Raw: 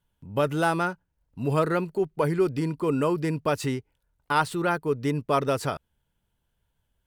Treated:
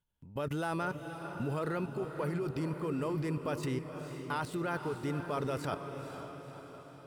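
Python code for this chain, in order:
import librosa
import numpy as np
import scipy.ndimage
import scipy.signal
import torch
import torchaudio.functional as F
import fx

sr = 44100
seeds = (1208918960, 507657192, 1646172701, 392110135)

y = fx.level_steps(x, sr, step_db=17)
y = fx.echo_diffused(y, sr, ms=493, feedback_pct=55, wet_db=-8)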